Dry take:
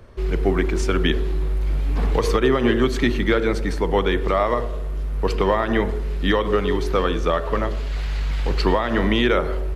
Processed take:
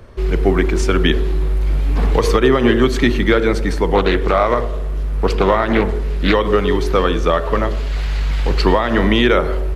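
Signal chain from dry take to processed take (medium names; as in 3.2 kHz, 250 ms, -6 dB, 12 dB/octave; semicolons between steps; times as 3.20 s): 3.94–6.34 s: loudspeaker Doppler distortion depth 0.35 ms; trim +5 dB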